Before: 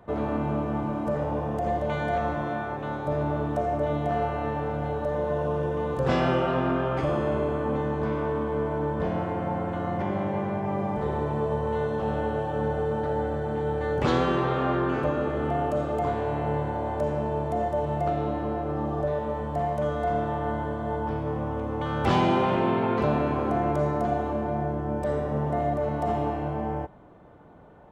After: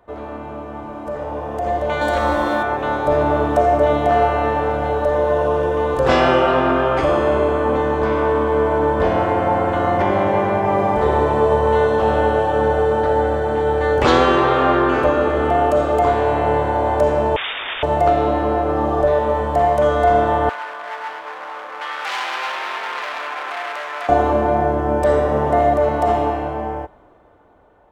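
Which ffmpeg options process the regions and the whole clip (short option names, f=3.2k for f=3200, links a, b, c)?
-filter_complex "[0:a]asettb=1/sr,asplit=3[a][b][c];[a]atrim=end=2.014[d];[b]atrim=start=2.01:end=2.63,asetpts=PTS-STARTPTS,afade=t=in:d=0.004:c=qsin,afade=t=out:st=0.616:d=0.004:c=qsin,highshelf=f=4.7k:g=11.5,aecho=1:1:3.6:0.57,atrim=end_sample=27342[e];[c]atrim=start=2.626[f];[d][e]acrossfade=d=0.004:c1=hsin:c2=qsin[g];[g][f]acrossfade=d=0.004:c1=qsin:c2=hsin,asettb=1/sr,asplit=3[h][i][j];[h]atrim=end=17.364[k];[i]atrim=start=17.36:end=17.83,asetpts=PTS-STARTPTS,afade=t=in:d=0.004:c=qsin,afade=t=out:st=0.466:d=0.004:c=qsin,aeval=exprs='(mod(37.6*val(0)+1,2)-1)/37.6':c=same,lowpass=f=3.1k:t=q:w=0.5098,lowpass=f=3.1k:t=q:w=0.6013,lowpass=f=3.1k:t=q:w=0.9,lowpass=f=3.1k:t=q:w=2.563,afreqshift=-3700[l];[j]atrim=start=17.826[m];[k][l]acrossfade=d=0.004:c1=hsin:c2=qsin[n];[n][m]acrossfade=d=0.004:c1=qsin:c2=hsin,asettb=1/sr,asplit=3[o][p][q];[o]atrim=end=20.494[r];[p]atrim=start=20.49:end=24.09,asetpts=PTS-STARTPTS,afade=t=in:d=0.004:c=qsin,afade=t=out:st=3.596:d=0.004:c=qsin,asoftclip=type=hard:threshold=-28.5dB,highpass=1.2k,highshelf=f=5k:g=-9[s];[q]atrim=start=24.086[t];[r][s]acrossfade=d=0.004:c1=hsin:c2=qsin[u];[u][t]acrossfade=d=0.004:c1=qsin:c2=hsin,equalizer=f=160:t=o:w=1.2:g=-13.5,dynaudnorm=f=350:g=11:m=15dB"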